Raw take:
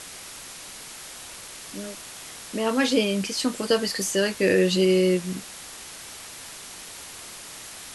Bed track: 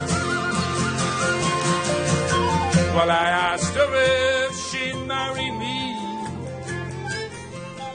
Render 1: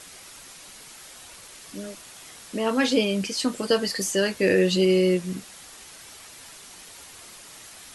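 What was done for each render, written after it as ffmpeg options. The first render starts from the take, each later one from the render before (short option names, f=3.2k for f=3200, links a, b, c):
-af "afftdn=nr=6:nf=-41"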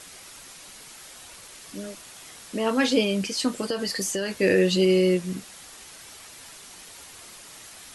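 -filter_complex "[0:a]asettb=1/sr,asplit=3[a][b][c];[a]atrim=end=3.634[d];[b]atrim=start=3.63:end=4.37,asetpts=PTS-STARTPTS,afade=t=in:d=0.004:c=qsin,afade=t=out:st=0.736:d=0.004:c=qsin,acompressor=threshold=-23dB:ratio=6:attack=3.2:release=140:knee=1:detection=peak[e];[c]atrim=start=4.366[f];[d][e]acrossfade=d=0.004:c1=hsin:c2=qsin[g];[g][f]acrossfade=d=0.004:c1=qsin:c2=hsin"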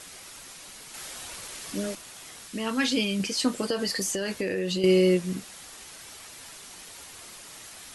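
-filter_complex "[0:a]asettb=1/sr,asplit=3[a][b][c];[a]atrim=end=2.474[d];[b]atrim=start=2.47:end=3.2,asetpts=PTS-STARTPTS,afade=t=in:d=0.004:c=qsin,afade=t=out:st=0.726:d=0.004:c=qsin,equalizer=f=570:w=0.86:g=-10.5[e];[c]atrim=start=3.196[f];[d][e]acrossfade=d=0.004:c1=hsin:c2=qsin[g];[g][f]acrossfade=d=0.004:c1=qsin:c2=hsin,asettb=1/sr,asplit=3[h][i][j];[h]atrim=end=3.944[k];[i]atrim=start=3.94:end=4.84,asetpts=PTS-STARTPTS,afade=t=in:d=0.004:c=qsin,afade=t=out:st=0.896:d=0.004:c=qsin,acompressor=threshold=-24dB:ratio=12:attack=3.2:release=140:knee=1:detection=peak[l];[j]atrim=start=4.836[m];[k][l]acrossfade=d=0.004:c1=hsin:c2=qsin[n];[n][m]acrossfade=d=0.004:c1=qsin:c2=hsin,asplit=3[o][p][q];[o]atrim=end=0.942[r];[p]atrim=start=0.938:end=1.952,asetpts=PTS-STARTPTS,volume=5dB[s];[q]atrim=start=1.948[t];[r][s]acrossfade=d=0.004:c1=hsin:c2=hsin[u];[u][t]acrossfade=d=0.004:c1=hsin:c2=hsin"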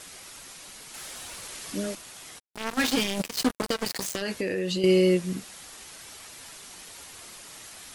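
-filter_complex "[0:a]asettb=1/sr,asplit=3[a][b][c];[a]atrim=end=0.624[d];[b]atrim=start=0.62:end=1.45,asetpts=PTS-STARTPTS,afade=t=in:d=0.004:c=qsin,afade=t=out:st=0.826:d=0.004:c=qsin,volume=34.5dB,asoftclip=hard,volume=-34.5dB[e];[c]atrim=start=1.446[f];[d][e]acrossfade=d=0.004:c1=hsin:c2=qsin[g];[g][f]acrossfade=d=0.004:c1=qsin:c2=hsin,asplit=3[h][i][j];[h]afade=t=out:st=2.38:d=0.02[k];[i]acrusher=bits=3:mix=0:aa=0.5,afade=t=in:st=2.38:d=0.02,afade=t=out:st=4.21:d=0.02[l];[j]afade=t=in:st=4.21:d=0.02[m];[k][l][m]amix=inputs=3:normalize=0"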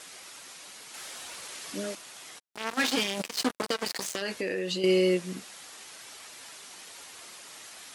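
-af "highpass=f=360:p=1,highshelf=f=12k:g=-9.5"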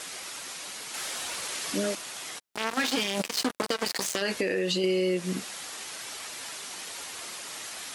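-filter_complex "[0:a]asplit=2[a][b];[b]alimiter=limit=-22.5dB:level=0:latency=1:release=21,volume=2.5dB[c];[a][c]amix=inputs=2:normalize=0,acompressor=threshold=-24dB:ratio=4"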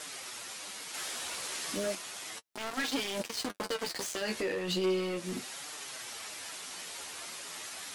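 -af "volume=24.5dB,asoftclip=hard,volume=-24.5dB,flanger=delay=6.5:depth=7.2:regen=31:speed=0.35:shape=triangular"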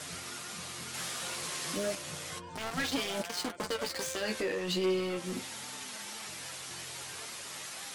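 -filter_complex "[1:a]volume=-25.5dB[a];[0:a][a]amix=inputs=2:normalize=0"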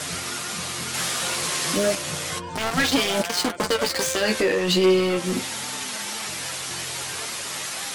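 -af "volume=12dB"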